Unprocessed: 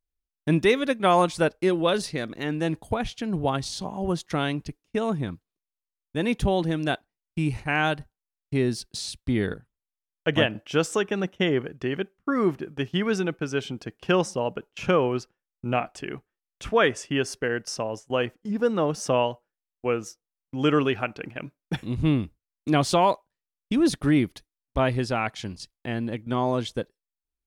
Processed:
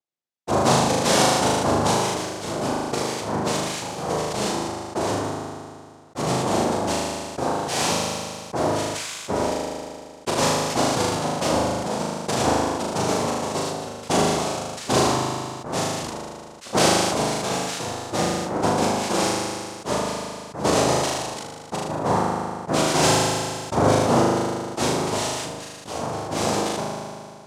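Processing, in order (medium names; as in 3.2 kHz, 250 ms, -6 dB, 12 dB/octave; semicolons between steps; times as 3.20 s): noise-vocoded speech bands 2; flutter echo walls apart 6.6 m, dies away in 0.95 s; decay stretcher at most 29 dB/s; trim -2 dB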